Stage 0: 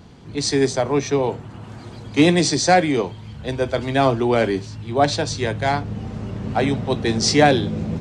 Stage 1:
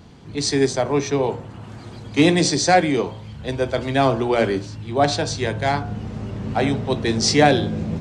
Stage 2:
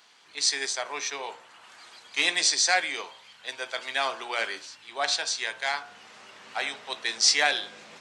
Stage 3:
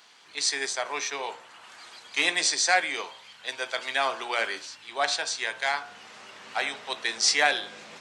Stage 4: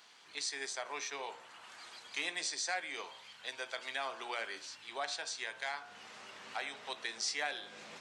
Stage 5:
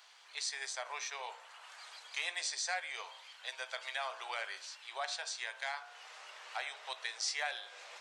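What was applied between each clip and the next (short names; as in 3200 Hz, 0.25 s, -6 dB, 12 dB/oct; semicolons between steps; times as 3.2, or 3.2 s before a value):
de-hum 59.81 Hz, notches 27
HPF 1400 Hz 12 dB/oct
dynamic EQ 4800 Hz, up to -5 dB, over -34 dBFS, Q 0.71; gain +2.5 dB
compressor 2:1, threshold -36 dBFS, peak gain reduction 10.5 dB; gain -5 dB
inverse Chebyshev high-pass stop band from 160 Hz, stop band 60 dB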